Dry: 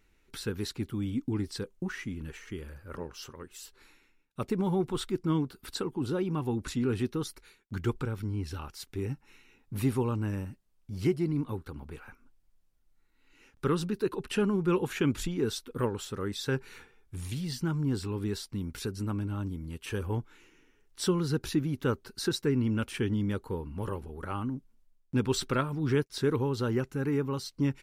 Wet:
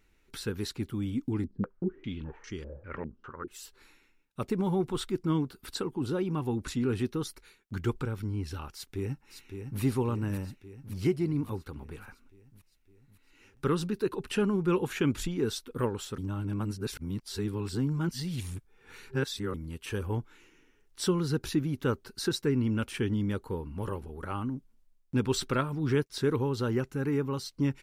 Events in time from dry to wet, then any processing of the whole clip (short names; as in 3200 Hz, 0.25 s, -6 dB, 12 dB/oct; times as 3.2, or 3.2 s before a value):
1.44–3.48 stepped low-pass 5 Hz 220–5600 Hz
8.73–9.81 echo throw 0.56 s, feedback 65%, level -7 dB
16.18–19.54 reverse